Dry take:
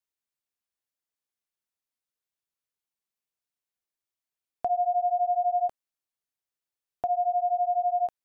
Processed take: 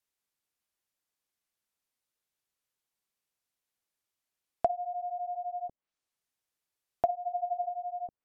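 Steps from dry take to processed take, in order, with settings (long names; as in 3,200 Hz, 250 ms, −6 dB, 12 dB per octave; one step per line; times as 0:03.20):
0:07.15–0:07.64: low-shelf EQ 410 Hz −10 dB
treble cut that deepens with the level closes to 300 Hz, closed at −24 dBFS
0:04.80–0:05.36: envelope flattener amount 50%
level +4 dB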